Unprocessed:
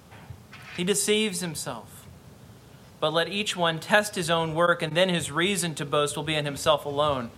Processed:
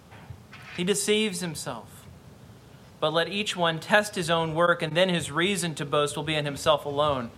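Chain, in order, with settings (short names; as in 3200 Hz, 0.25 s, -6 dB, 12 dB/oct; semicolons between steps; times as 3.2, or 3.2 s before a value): high shelf 7000 Hz -4.5 dB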